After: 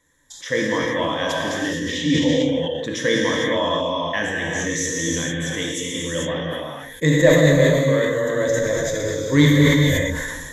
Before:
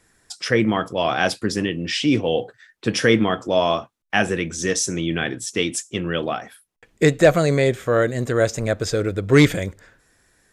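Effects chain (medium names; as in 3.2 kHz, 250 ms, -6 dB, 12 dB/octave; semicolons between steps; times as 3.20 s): rippled EQ curve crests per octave 1.1, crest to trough 14 dB; gated-style reverb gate 480 ms flat, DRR -3.5 dB; decay stretcher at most 31 dB/s; trim -8 dB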